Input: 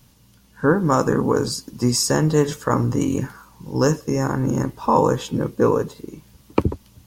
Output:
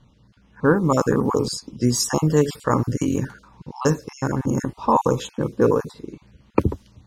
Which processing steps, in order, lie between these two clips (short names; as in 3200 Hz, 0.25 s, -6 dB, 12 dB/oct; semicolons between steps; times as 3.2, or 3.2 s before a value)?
random spectral dropouts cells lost 26%; low-pass opened by the level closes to 2900 Hz, open at -17 dBFS